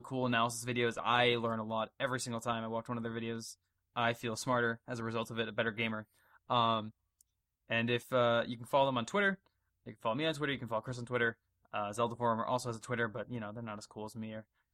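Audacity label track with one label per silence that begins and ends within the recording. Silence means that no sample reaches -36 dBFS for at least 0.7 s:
6.860000	7.710000	silence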